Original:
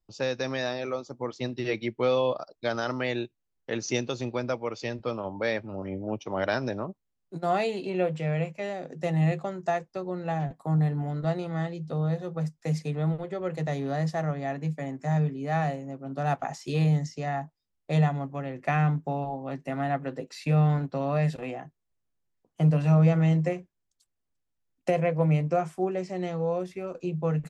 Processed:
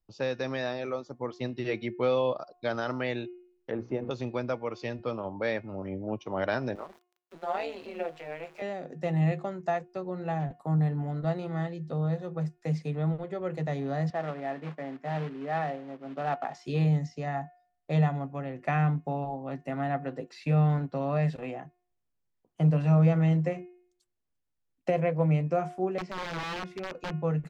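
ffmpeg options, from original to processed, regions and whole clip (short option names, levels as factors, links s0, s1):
-filter_complex "[0:a]asettb=1/sr,asplit=3[s0][s1][s2];[s0]atrim=end=3.714[s3];[s1]atrim=start=3.71:end=4.11,asetpts=PTS-STARTPTS,afade=t=in:d=0.004:c=qsin,afade=t=out:st=0.396:d=0.004:c=qsin,aeval=exprs='val(0)+0.5*0.00891*sgn(val(0))':c=same,lowpass=1000,bandreject=f=60:t=h:w=6,bandreject=f=120:t=h:w=6,bandreject=f=180:t=h:w=6,bandreject=f=240:t=h:w=6,bandreject=f=300:t=h:w=6,bandreject=f=360:t=h:w=6,bandreject=f=420:t=h:w=6,bandreject=f=480:t=h:w=6[s4];[s2]atrim=start=4.106[s5];[s3][s4]acrossfade=d=0.004:c1=hsin:c2=qsin[s6];[s6][s5]acrossfade=d=0.004:c1=qsin:c2=hsin,asettb=1/sr,asplit=3[s7][s8][s9];[s7]atrim=end=6.754[s10];[s8]atrim=start=6.75:end=8.62,asetpts=PTS-STARTPTS,afade=t=in:d=0.004:c=qsin,afade=t=out:st=1.866:d=0.004:c=qsin,aeval=exprs='val(0)+0.5*0.00944*sgn(val(0))':c=same,highpass=480,tremolo=f=160:d=0.788[s11];[s9]atrim=start=8.616[s12];[s10][s11]acrossfade=d=0.004:c1=hsin:c2=qsin[s13];[s13][s12]acrossfade=d=0.004:c1=qsin:c2=hsin,asettb=1/sr,asplit=3[s14][s15][s16];[s14]atrim=end=14.104[s17];[s15]atrim=start=14.1:end=16.55,asetpts=PTS-STARTPTS,afade=t=in:d=0.004:c=qsin,afade=t=out:st=2.446:d=0.004:c=qsin,acrusher=bits=3:mode=log:mix=0:aa=0.000001,highpass=240,lowpass=2800[s18];[s16]atrim=start=16.546[s19];[s17][s18]acrossfade=d=0.004:c1=hsin:c2=qsin[s20];[s20][s19]acrossfade=d=0.004:c1=qsin:c2=hsin,asettb=1/sr,asplit=3[s21][s22][s23];[s21]atrim=end=25.984[s24];[s22]atrim=start=25.98:end=27.14,asetpts=PTS-STARTPTS,afade=t=in:d=0.004:c=qsin,afade=t=out:st=1.156:d=0.004:c=qsin,bandreject=f=50:t=h:w=6,bandreject=f=100:t=h:w=6,bandreject=f=150:t=h:w=6,bandreject=f=200:t=h:w=6,aeval=exprs='(mod(21.1*val(0)+1,2)-1)/21.1':c=same[s25];[s23]atrim=start=27.136[s26];[s24][s25]acrossfade=d=0.004:c1=hsin:c2=qsin[s27];[s27][s26]acrossfade=d=0.004:c1=qsin:c2=hsin,bandreject=f=358:t=h:w=4,bandreject=f=716:t=h:w=4,bandreject=f=1074:t=h:w=4,bandreject=f=1432:t=h:w=4,bandreject=f=1790:t=h:w=4,bandreject=f=2148:t=h:w=4,bandreject=f=2506:t=h:w=4,bandreject=f=2864:t=h:w=4,acrossover=split=5900[s28][s29];[s29]acompressor=threshold=0.00112:ratio=4:attack=1:release=60[s30];[s28][s30]amix=inputs=2:normalize=0,highshelf=f=4500:g=-7,volume=0.841"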